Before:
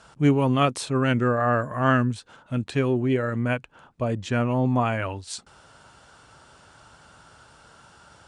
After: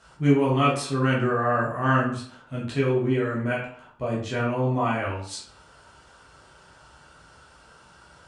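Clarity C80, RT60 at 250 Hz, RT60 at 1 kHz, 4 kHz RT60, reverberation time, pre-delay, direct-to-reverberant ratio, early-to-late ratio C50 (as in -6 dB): 9.5 dB, 0.45 s, 0.55 s, 0.40 s, 0.55 s, 9 ms, -5.5 dB, 5.0 dB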